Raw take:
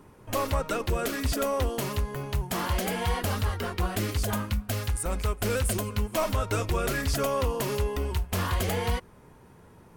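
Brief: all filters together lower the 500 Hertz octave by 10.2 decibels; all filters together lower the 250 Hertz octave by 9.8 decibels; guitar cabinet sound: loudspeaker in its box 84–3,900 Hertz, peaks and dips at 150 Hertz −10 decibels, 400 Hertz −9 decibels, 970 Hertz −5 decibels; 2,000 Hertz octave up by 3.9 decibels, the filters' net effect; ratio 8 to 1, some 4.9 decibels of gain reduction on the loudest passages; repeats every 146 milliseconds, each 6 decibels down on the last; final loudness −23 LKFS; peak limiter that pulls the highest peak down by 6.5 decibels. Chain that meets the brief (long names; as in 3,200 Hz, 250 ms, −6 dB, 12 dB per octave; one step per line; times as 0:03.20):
parametric band 250 Hz −8 dB
parametric band 500 Hz −7.5 dB
parametric band 2,000 Hz +6 dB
downward compressor 8 to 1, threshold −28 dBFS
brickwall limiter −23.5 dBFS
loudspeaker in its box 84–3,900 Hz, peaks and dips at 150 Hz −10 dB, 400 Hz −9 dB, 970 Hz −5 dB
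repeating echo 146 ms, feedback 50%, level −6 dB
level +12.5 dB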